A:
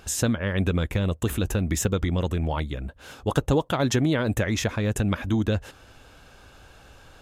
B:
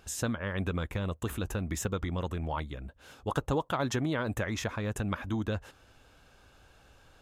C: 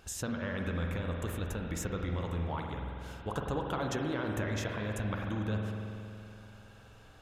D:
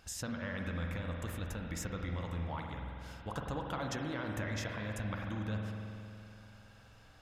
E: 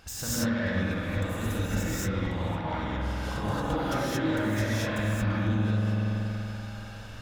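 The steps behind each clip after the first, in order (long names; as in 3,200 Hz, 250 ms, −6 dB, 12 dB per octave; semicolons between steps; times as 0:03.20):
dynamic equaliser 1,100 Hz, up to +7 dB, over −43 dBFS, Q 1.2; level −9 dB
downward compressor 1.5 to 1, threshold −42 dBFS, peak gain reduction 6.5 dB; spring reverb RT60 2.8 s, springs 47 ms, chirp 70 ms, DRR 1 dB
thirty-one-band graphic EQ 400 Hz −8 dB, 2,000 Hz +4 dB, 5,000 Hz +6 dB; level −3.5 dB
phase distortion by the signal itself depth 0.063 ms; downward compressor, threshold −41 dBFS, peak gain reduction 8 dB; reverb whose tail is shaped and stops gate 250 ms rising, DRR −8 dB; level +6.5 dB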